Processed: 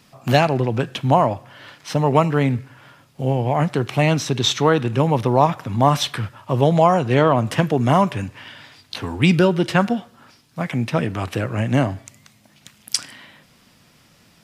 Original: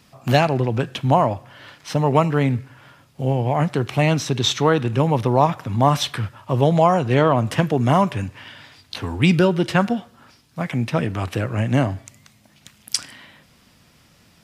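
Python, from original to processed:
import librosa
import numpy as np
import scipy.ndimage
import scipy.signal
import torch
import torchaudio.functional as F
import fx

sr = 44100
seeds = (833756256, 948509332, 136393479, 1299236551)

y = fx.peak_eq(x, sr, hz=64.0, db=-9.5, octaves=0.76)
y = y * librosa.db_to_amplitude(1.0)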